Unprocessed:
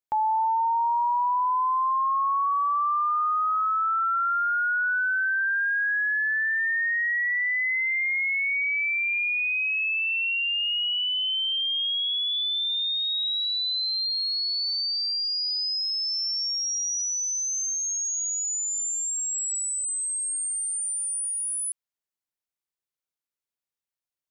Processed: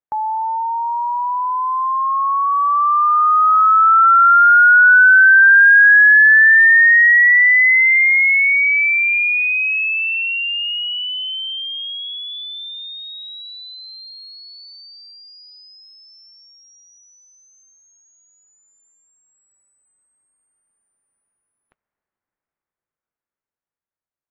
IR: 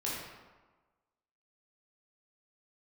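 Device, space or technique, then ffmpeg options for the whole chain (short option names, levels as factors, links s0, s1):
action camera in a waterproof case: -af "lowpass=f=1900:w=0.5412,lowpass=f=1900:w=1.3066,dynaudnorm=f=820:g=9:m=6.31,volume=1.33" -ar 32000 -c:a aac -b:a 64k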